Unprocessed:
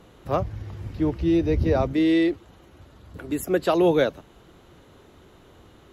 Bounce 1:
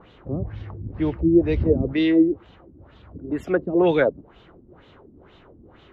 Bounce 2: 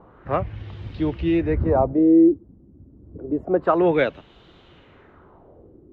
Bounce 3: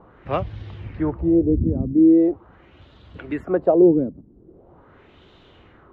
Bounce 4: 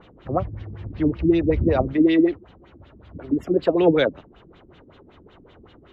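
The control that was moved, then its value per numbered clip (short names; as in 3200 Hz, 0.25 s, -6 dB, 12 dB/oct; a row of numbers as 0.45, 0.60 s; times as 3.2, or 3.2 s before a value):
LFO low-pass, rate: 2.1, 0.28, 0.42, 5.3 Hz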